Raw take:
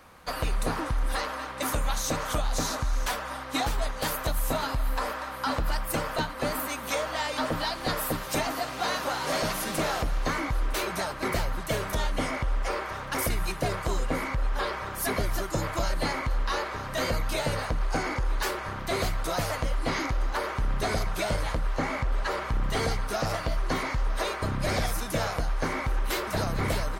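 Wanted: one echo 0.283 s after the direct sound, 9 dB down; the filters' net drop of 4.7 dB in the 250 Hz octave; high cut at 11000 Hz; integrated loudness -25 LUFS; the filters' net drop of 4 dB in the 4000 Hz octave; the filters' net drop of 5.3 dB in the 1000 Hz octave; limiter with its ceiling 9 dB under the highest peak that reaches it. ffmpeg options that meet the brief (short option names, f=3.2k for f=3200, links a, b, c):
-af "lowpass=11k,equalizer=f=250:t=o:g=-6,equalizer=f=1k:t=o:g=-6.5,equalizer=f=4k:t=o:g=-4.5,alimiter=level_in=4.5dB:limit=-24dB:level=0:latency=1,volume=-4.5dB,aecho=1:1:283:0.355,volume=12dB"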